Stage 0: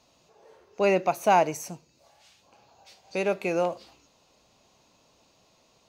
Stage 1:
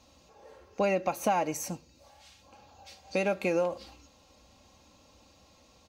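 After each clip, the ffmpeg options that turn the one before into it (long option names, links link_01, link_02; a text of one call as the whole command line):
ffmpeg -i in.wav -af "equalizer=frequency=75:width_type=o:width=1.5:gain=12.5,aecho=1:1:3.7:0.52,acompressor=threshold=-25dB:ratio=6,volume=1dB" out.wav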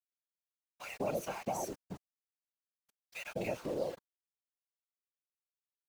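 ffmpeg -i in.wav -filter_complex "[0:a]acrossover=split=1000[link_01][link_02];[link_01]adelay=210[link_03];[link_03][link_02]amix=inputs=2:normalize=0,aeval=exprs='val(0)*gte(abs(val(0)),0.0119)':channel_layout=same,afftfilt=real='hypot(re,im)*cos(2*PI*random(0))':imag='hypot(re,im)*sin(2*PI*random(1))':win_size=512:overlap=0.75,volume=-2dB" out.wav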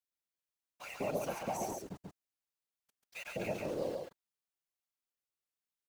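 ffmpeg -i in.wav -af "aecho=1:1:138:0.668,volume=-1.5dB" out.wav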